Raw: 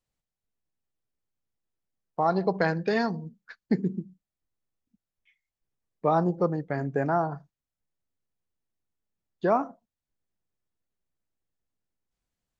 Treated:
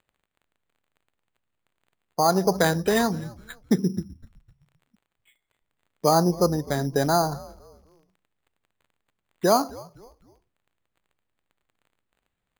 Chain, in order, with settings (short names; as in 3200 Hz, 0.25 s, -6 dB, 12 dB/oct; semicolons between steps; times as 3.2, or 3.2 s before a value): crackle 97/s -59 dBFS; frequency-shifting echo 0.255 s, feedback 36%, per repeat -110 Hz, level -21 dB; sample-and-hold 8×; gain +4 dB